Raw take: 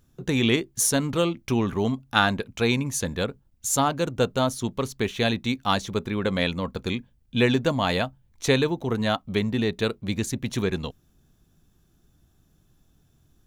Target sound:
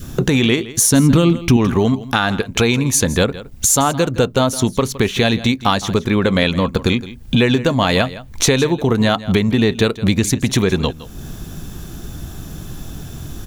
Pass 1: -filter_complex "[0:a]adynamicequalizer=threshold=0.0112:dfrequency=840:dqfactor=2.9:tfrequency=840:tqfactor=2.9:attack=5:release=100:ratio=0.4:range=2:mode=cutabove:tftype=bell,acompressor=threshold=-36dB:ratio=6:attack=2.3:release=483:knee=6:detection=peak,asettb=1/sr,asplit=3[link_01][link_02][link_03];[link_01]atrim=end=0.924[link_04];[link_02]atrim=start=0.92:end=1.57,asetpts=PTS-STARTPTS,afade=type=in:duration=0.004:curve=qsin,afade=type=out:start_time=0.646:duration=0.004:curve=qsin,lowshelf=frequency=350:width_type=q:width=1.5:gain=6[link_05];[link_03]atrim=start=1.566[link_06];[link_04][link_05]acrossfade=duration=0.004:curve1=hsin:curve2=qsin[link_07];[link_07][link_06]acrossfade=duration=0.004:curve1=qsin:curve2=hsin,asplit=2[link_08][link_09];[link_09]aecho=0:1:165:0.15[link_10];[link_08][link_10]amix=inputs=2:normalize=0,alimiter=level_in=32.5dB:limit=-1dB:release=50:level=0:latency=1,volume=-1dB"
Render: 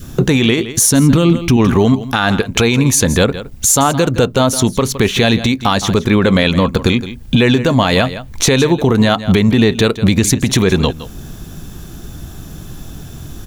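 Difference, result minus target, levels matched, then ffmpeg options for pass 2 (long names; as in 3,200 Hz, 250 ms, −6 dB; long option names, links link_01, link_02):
downward compressor: peak gain reduction −6 dB
-filter_complex "[0:a]adynamicequalizer=threshold=0.0112:dfrequency=840:dqfactor=2.9:tfrequency=840:tqfactor=2.9:attack=5:release=100:ratio=0.4:range=2:mode=cutabove:tftype=bell,acompressor=threshold=-43dB:ratio=6:attack=2.3:release=483:knee=6:detection=peak,asettb=1/sr,asplit=3[link_01][link_02][link_03];[link_01]atrim=end=0.924[link_04];[link_02]atrim=start=0.92:end=1.57,asetpts=PTS-STARTPTS,afade=type=in:duration=0.004:curve=qsin,afade=type=out:start_time=0.646:duration=0.004:curve=qsin,lowshelf=frequency=350:width_type=q:width=1.5:gain=6[link_05];[link_03]atrim=start=1.566[link_06];[link_04][link_05]acrossfade=duration=0.004:curve1=hsin:curve2=qsin[link_07];[link_07][link_06]acrossfade=duration=0.004:curve1=qsin:curve2=hsin,asplit=2[link_08][link_09];[link_09]aecho=0:1:165:0.15[link_10];[link_08][link_10]amix=inputs=2:normalize=0,alimiter=level_in=32.5dB:limit=-1dB:release=50:level=0:latency=1,volume=-1dB"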